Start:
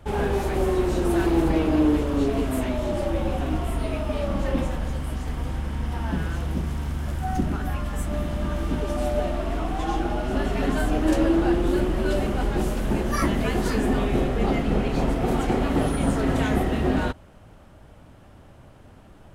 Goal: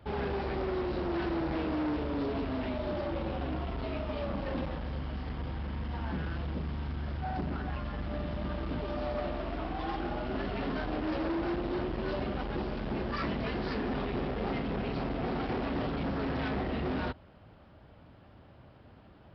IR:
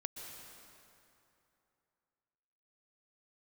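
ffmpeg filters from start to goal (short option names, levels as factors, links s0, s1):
-af "aresample=11025,asoftclip=type=hard:threshold=0.0631,aresample=44100,highpass=55,volume=0.531"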